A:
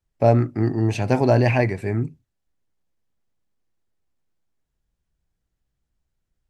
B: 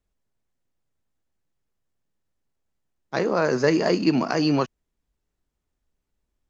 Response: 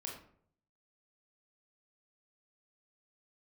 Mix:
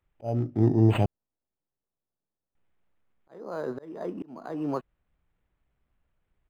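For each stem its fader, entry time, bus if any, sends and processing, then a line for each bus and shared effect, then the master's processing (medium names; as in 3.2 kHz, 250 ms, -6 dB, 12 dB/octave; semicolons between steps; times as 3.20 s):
+1.0 dB, 0.00 s, muted 1.06–2.55 s, no send, high-order bell 1.5 kHz -11.5 dB 1.3 oct
-5.0 dB, 0.15 s, no send, low-pass 1.2 kHz 12 dB/octave; bass shelf 180 Hz -9.5 dB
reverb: none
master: slow attack 511 ms; treble shelf 5.7 kHz +8.5 dB; decimation joined by straight lines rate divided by 8×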